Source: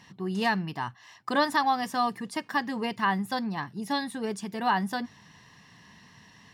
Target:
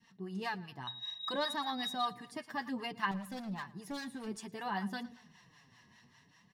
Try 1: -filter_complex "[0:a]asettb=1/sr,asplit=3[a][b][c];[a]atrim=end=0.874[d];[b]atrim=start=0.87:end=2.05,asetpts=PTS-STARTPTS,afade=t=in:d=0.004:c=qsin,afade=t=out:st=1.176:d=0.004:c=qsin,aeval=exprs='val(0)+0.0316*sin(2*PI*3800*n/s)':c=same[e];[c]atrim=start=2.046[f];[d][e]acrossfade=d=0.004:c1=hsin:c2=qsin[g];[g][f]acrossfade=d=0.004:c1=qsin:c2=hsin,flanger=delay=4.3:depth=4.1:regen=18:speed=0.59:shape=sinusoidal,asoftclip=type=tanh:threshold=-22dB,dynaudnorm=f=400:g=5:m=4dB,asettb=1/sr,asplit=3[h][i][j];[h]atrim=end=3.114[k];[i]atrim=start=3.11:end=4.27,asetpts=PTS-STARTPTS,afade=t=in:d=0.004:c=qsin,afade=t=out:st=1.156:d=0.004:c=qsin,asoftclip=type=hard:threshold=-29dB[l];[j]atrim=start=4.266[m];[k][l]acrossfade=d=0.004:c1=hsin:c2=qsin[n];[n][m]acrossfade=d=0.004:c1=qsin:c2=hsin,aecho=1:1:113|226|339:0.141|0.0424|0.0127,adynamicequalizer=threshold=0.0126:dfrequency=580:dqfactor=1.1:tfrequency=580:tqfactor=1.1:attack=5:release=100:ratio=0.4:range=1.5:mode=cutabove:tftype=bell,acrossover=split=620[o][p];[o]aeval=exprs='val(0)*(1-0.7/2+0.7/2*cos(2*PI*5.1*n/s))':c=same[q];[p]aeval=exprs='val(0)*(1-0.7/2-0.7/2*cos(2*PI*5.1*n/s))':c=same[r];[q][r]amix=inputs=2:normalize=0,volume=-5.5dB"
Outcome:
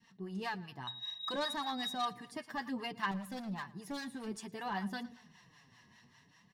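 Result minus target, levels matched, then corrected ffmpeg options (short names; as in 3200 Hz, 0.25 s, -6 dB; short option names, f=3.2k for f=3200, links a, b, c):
soft clip: distortion +12 dB
-filter_complex "[0:a]asettb=1/sr,asplit=3[a][b][c];[a]atrim=end=0.874[d];[b]atrim=start=0.87:end=2.05,asetpts=PTS-STARTPTS,afade=t=in:d=0.004:c=qsin,afade=t=out:st=1.176:d=0.004:c=qsin,aeval=exprs='val(0)+0.0316*sin(2*PI*3800*n/s)':c=same[e];[c]atrim=start=2.046[f];[d][e]acrossfade=d=0.004:c1=hsin:c2=qsin[g];[g][f]acrossfade=d=0.004:c1=qsin:c2=hsin,flanger=delay=4.3:depth=4.1:regen=18:speed=0.59:shape=sinusoidal,asoftclip=type=tanh:threshold=-14.5dB,dynaudnorm=f=400:g=5:m=4dB,asettb=1/sr,asplit=3[h][i][j];[h]atrim=end=3.114[k];[i]atrim=start=3.11:end=4.27,asetpts=PTS-STARTPTS,afade=t=in:d=0.004:c=qsin,afade=t=out:st=1.156:d=0.004:c=qsin,asoftclip=type=hard:threshold=-29dB[l];[j]atrim=start=4.266[m];[k][l]acrossfade=d=0.004:c1=hsin:c2=qsin[n];[n][m]acrossfade=d=0.004:c1=qsin:c2=hsin,aecho=1:1:113|226|339:0.141|0.0424|0.0127,adynamicequalizer=threshold=0.0126:dfrequency=580:dqfactor=1.1:tfrequency=580:tqfactor=1.1:attack=5:release=100:ratio=0.4:range=1.5:mode=cutabove:tftype=bell,acrossover=split=620[o][p];[o]aeval=exprs='val(0)*(1-0.7/2+0.7/2*cos(2*PI*5.1*n/s))':c=same[q];[p]aeval=exprs='val(0)*(1-0.7/2-0.7/2*cos(2*PI*5.1*n/s))':c=same[r];[q][r]amix=inputs=2:normalize=0,volume=-5.5dB"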